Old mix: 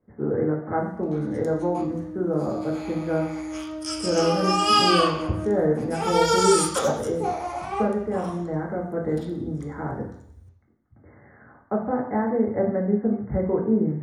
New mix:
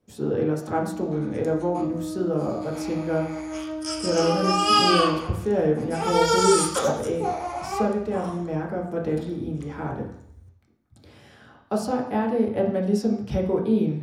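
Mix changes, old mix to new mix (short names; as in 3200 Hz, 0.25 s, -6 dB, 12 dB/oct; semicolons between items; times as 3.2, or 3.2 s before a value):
speech: remove brick-wall FIR low-pass 2200 Hz; first sound: entry -0.55 s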